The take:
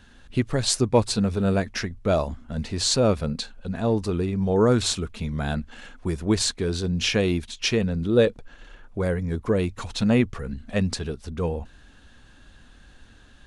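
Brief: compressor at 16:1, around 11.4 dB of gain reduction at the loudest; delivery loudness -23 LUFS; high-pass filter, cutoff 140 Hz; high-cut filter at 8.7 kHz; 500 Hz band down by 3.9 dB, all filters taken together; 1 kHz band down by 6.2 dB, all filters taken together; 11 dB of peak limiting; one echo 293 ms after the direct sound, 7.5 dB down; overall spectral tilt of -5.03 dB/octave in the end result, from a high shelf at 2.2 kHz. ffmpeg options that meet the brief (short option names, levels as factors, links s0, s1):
-af "highpass=140,lowpass=8700,equalizer=f=500:t=o:g=-3,equalizer=f=1000:t=o:g=-6,highshelf=f=2200:g=-6,acompressor=threshold=0.0398:ratio=16,alimiter=level_in=1.5:limit=0.0631:level=0:latency=1,volume=0.668,aecho=1:1:293:0.422,volume=5.31"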